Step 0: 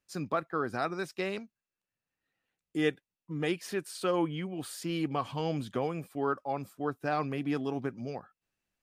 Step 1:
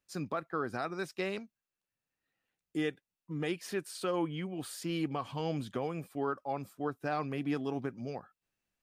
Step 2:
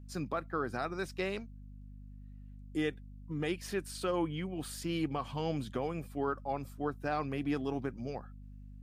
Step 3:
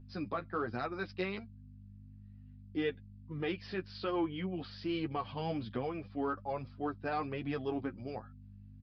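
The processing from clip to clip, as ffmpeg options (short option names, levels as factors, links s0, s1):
-af "alimiter=limit=0.0794:level=0:latency=1:release=196,volume=0.841"
-af "aeval=exprs='val(0)+0.00398*(sin(2*PI*50*n/s)+sin(2*PI*2*50*n/s)/2+sin(2*PI*3*50*n/s)/3+sin(2*PI*4*50*n/s)/4+sin(2*PI*5*50*n/s)/5)':c=same"
-filter_complex "[0:a]flanger=delay=8.1:depth=3.4:regen=15:speed=1.2:shape=triangular,asplit=2[s0][s1];[s1]volume=33.5,asoftclip=hard,volume=0.0299,volume=0.316[s2];[s0][s2]amix=inputs=2:normalize=0,aresample=11025,aresample=44100"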